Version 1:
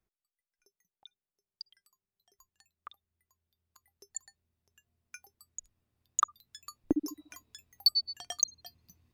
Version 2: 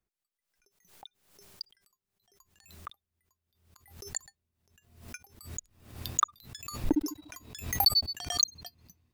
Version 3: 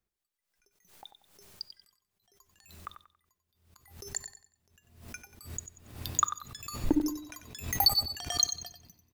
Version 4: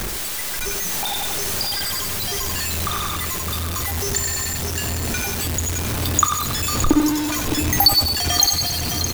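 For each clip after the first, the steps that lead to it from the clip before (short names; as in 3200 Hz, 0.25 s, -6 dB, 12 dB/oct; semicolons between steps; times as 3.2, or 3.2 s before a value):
sample leveller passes 1; backwards sustainer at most 90 dB/s
feedback echo 93 ms, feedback 32%, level -10 dB; on a send at -18 dB: reverb, pre-delay 3 ms
zero-crossing step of -26.5 dBFS; echo 0.613 s -9 dB; gain +8 dB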